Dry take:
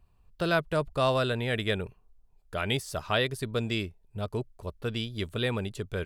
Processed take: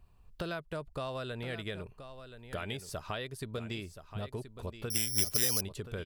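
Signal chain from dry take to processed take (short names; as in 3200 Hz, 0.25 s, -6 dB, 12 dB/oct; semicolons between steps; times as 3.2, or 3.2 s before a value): compressor 6:1, threshold -38 dBFS, peak gain reduction 16.5 dB; echo 1.026 s -11.5 dB; 4.9–5.61 careless resampling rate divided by 8×, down none, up zero stuff; gain +2 dB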